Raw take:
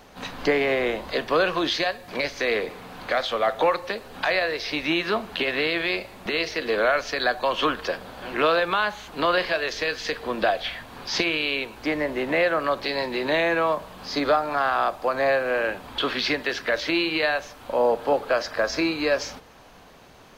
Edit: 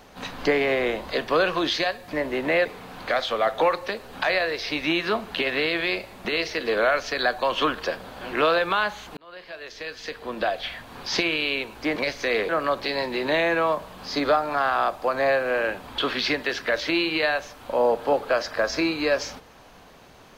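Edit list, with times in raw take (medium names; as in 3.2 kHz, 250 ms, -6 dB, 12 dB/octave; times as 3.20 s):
2.13–2.66 s: swap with 11.97–12.49 s
9.18–11.03 s: fade in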